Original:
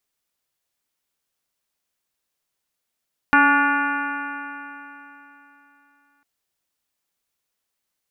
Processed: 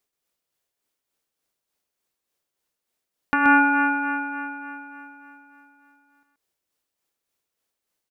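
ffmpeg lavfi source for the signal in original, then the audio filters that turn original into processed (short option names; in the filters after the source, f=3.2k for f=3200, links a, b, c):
-f lavfi -i "aevalsrc='0.112*pow(10,-3*t/3.34)*sin(2*PI*281.32*t)+0.015*pow(10,-3*t/3.34)*sin(2*PI*564.58*t)+0.126*pow(10,-3*t/3.34)*sin(2*PI*851.68*t)+0.112*pow(10,-3*t/3.34)*sin(2*PI*1144.49*t)+0.211*pow(10,-3*t/3.34)*sin(2*PI*1444.83*t)+0.0891*pow(10,-3*t/3.34)*sin(2*PI*1754.41*t)+0.0316*pow(10,-3*t/3.34)*sin(2*PI*2074.88*t)+0.0501*pow(10,-3*t/3.34)*sin(2*PI*2407.77*t)+0.0251*pow(10,-3*t/3.34)*sin(2*PI*2754.52*t)':d=2.9:s=44100"
-af "equalizer=f=420:w=1:g=5.5,tremolo=f=3.4:d=0.62,aecho=1:1:128:0.473"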